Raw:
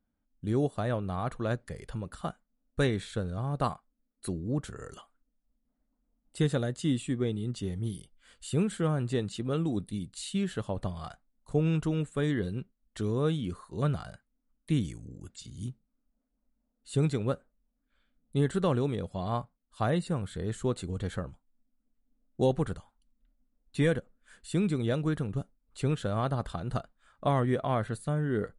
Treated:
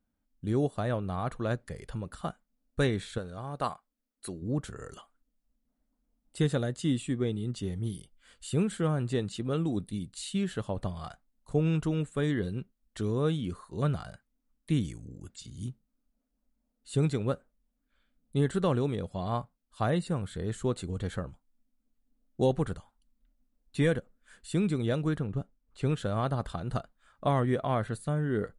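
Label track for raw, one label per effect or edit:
3.180000	4.420000	low-shelf EQ 270 Hz −10.5 dB
25.180000	25.830000	low-pass filter 2,700 Hz 6 dB per octave

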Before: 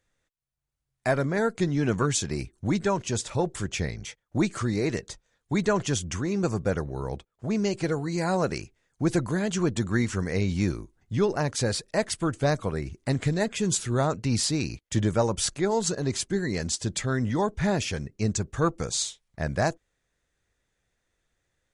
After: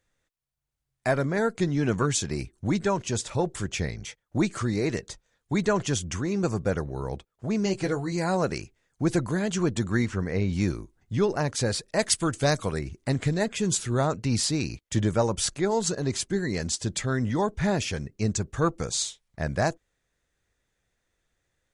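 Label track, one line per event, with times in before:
7.640000	8.120000	double-tracking delay 16 ms −7.5 dB
10.060000	10.530000	low-pass filter 2,400 Hz 6 dB per octave
11.990000	12.790000	high-shelf EQ 2,700 Hz +9.5 dB

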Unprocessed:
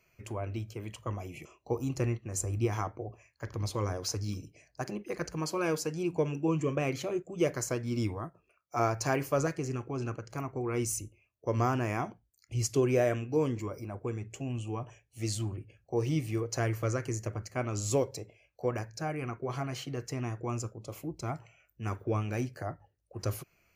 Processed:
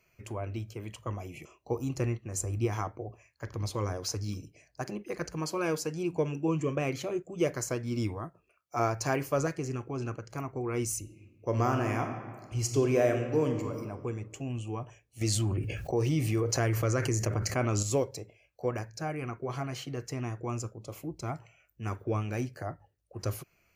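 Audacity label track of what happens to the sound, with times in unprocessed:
10.990000	13.810000	thrown reverb, RT60 1.6 s, DRR 5 dB
15.210000	17.830000	envelope flattener amount 70%

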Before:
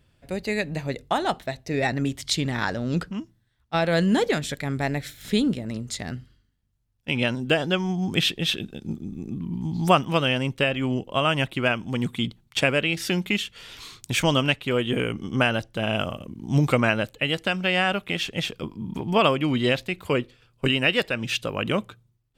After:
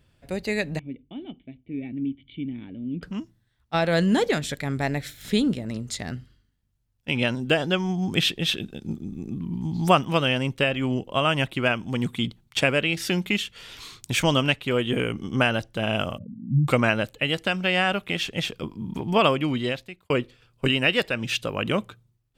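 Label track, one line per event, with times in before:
0.790000	3.030000	formant resonators in series i
16.180000	16.680000	expanding power law on the bin magnitudes exponent 3.5
19.360000	20.100000	fade out

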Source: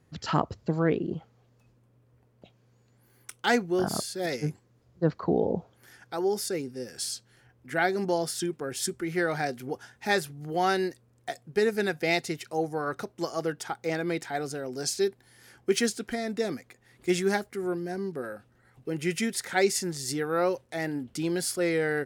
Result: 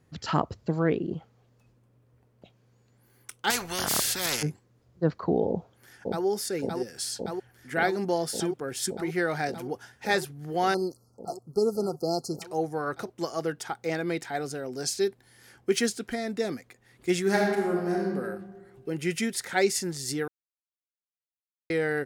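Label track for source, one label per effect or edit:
3.500000	4.430000	every bin compressed towards the loudest bin 4 to 1
5.480000	6.250000	delay throw 570 ms, feedback 85%, level −2.5 dB
10.740000	12.420000	linear-phase brick-wall band-stop 1,400–4,100 Hz
17.210000	18.070000	thrown reverb, RT60 1.4 s, DRR −2.5 dB
20.280000	21.700000	silence

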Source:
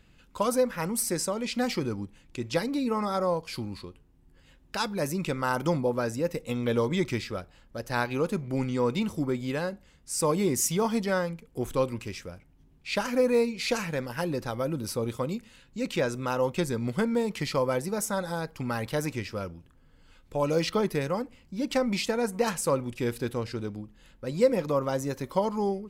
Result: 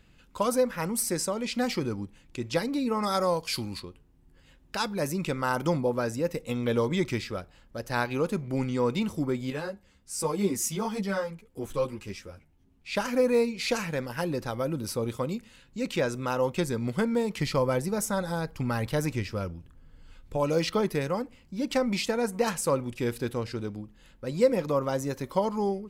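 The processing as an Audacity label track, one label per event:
3.030000	3.800000	high-shelf EQ 2,100 Hz +10 dB
9.500000	12.950000	string-ensemble chorus
17.380000	20.370000	low-shelf EQ 130 Hz +8.5 dB

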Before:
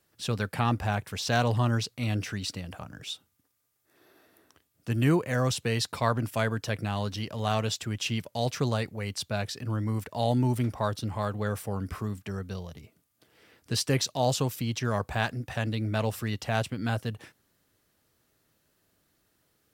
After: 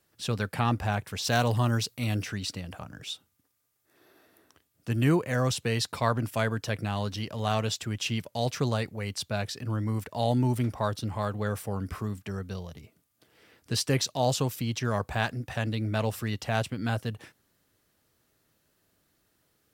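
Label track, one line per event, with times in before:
1.240000	2.230000	high-shelf EQ 9,300 Hz +11.5 dB

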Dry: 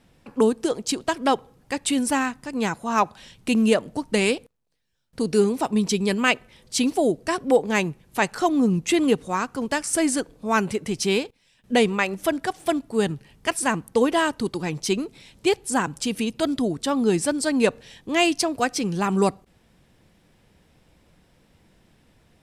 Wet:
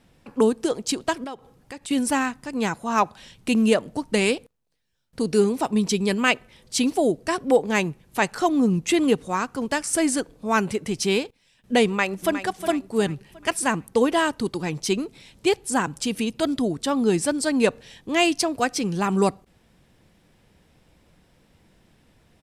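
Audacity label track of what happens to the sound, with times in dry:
1.240000	1.910000	downward compressor 2.5 to 1, threshold −38 dBFS
11.860000	12.400000	delay throw 360 ms, feedback 45%, level −11 dB

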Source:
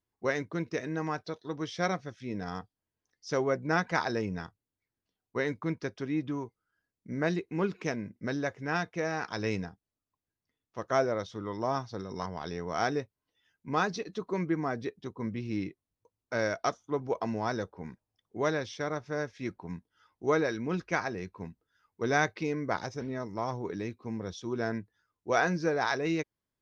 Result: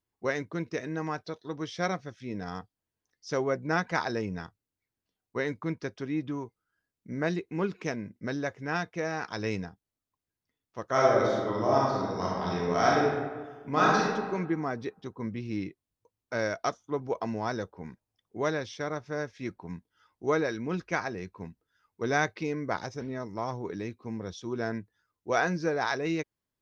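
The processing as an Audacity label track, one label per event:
10.910000	14.020000	thrown reverb, RT60 1.4 s, DRR −5.5 dB

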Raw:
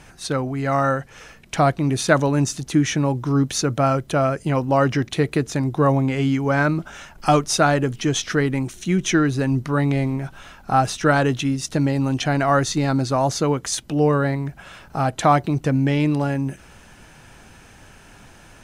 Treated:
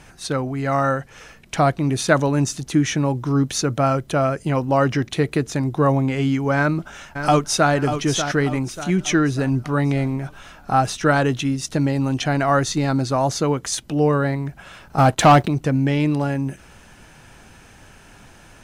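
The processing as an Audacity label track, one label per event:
6.560000	7.720000	delay throw 590 ms, feedback 45%, level −8.5 dB
14.980000	15.480000	leveller curve on the samples passes 2

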